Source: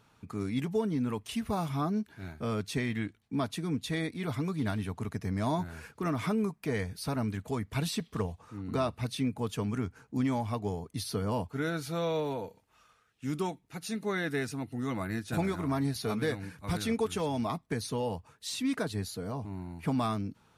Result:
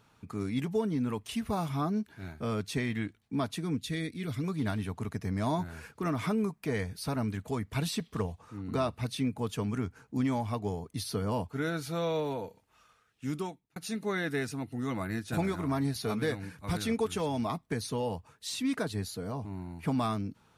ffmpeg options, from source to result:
-filter_complex "[0:a]asettb=1/sr,asplit=3[a][b][c];[a]atrim=end=3.774[d];[b]atrim=start=3.77:end=4.44,asetpts=PTS-STARTPTS,afade=t=in:d=0.004:c=qsin,afade=t=out:st=0.666:d=0.004:c=qsin,equalizer=f=870:w=1.2:g=-13.5[e];[c]atrim=start=4.436[f];[d][e]acrossfade=d=0.004:c1=hsin:c2=qsin[g];[g][f]acrossfade=d=0.004:c1=qsin:c2=hsin,asplit=2[h][i];[h]atrim=end=13.76,asetpts=PTS-STARTPTS,afade=t=out:st=13.28:d=0.48[j];[i]atrim=start=13.76,asetpts=PTS-STARTPTS,afade=t=in:d=0.004:c=hsin[k];[j][k]concat=n=2:v=0:a=1"

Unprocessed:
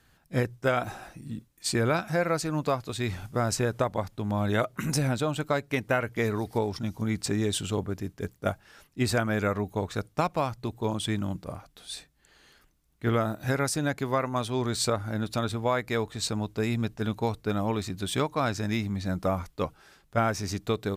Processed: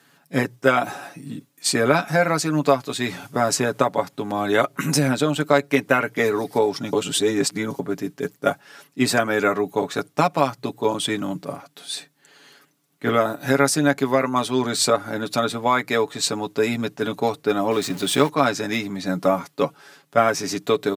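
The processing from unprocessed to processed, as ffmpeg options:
-filter_complex "[0:a]asettb=1/sr,asplit=3[a][b][c];[a]atrim=end=17.714[d];[b]atrim=start=17.71:end=18.29,asetpts=PTS-STARTPTS,afade=t=in:d=0.004:c=qsin,afade=t=out:st=0.576:d=0.004:c=qsin,aeval=exprs='val(0)+0.5*0.0126*sgn(val(0))':c=same[e];[c]atrim=start=18.286[f];[d][e]acrossfade=d=0.004:c1=hsin:c2=qsin[g];[g][f]acrossfade=d=0.004:c1=qsin:c2=hsin,asplit=3[h][i][j];[h]atrim=end=6.932[k];[i]atrim=start=6.928:end=7.792,asetpts=PTS-STARTPTS,areverse[l];[j]atrim=start=7.788[m];[k][l]acrossfade=d=0.004:c1=hsin:c2=hsin[n];[n][m]acrossfade=d=0.004:c1=hsin:c2=hsin,highpass=f=170:w=0.5412,highpass=f=170:w=1.3066,aecho=1:1:7.1:0.64,volume=7dB"

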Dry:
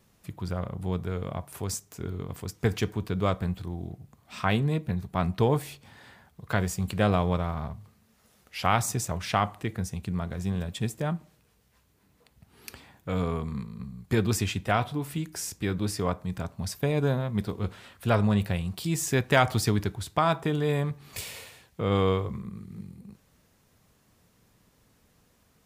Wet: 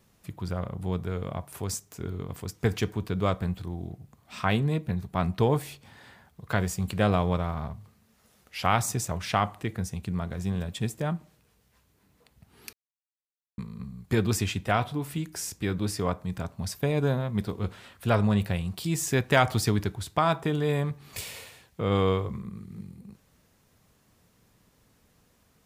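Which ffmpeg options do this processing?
-filter_complex "[0:a]asplit=3[a][b][c];[a]atrim=end=12.73,asetpts=PTS-STARTPTS,afade=t=out:st=12.726:d=0.004:c=hsin[d];[b]atrim=start=12.73:end=13.58,asetpts=PTS-STARTPTS,volume=0[e];[c]atrim=start=13.58,asetpts=PTS-STARTPTS,afade=t=in:d=0.004:c=hsin[f];[d][e][f]concat=n=3:v=0:a=1"

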